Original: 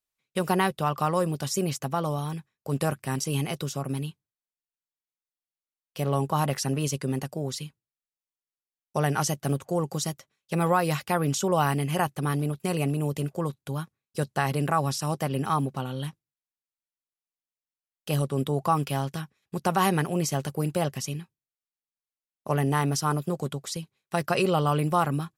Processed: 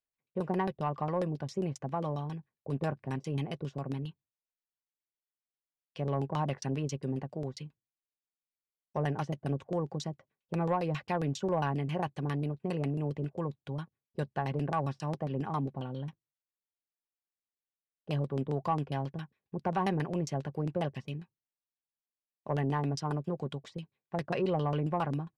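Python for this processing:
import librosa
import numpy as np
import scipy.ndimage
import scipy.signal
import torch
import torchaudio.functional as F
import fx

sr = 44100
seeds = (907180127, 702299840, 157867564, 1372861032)

y = fx.notch(x, sr, hz=1300.0, q=5.5)
y = fx.filter_lfo_lowpass(y, sr, shape='saw_down', hz=7.4, low_hz=360.0, high_hz=5400.0, q=0.96)
y = 10.0 ** (-12.5 / 20.0) * np.tanh(y / 10.0 ** (-12.5 / 20.0))
y = y * librosa.db_to_amplitude(-5.5)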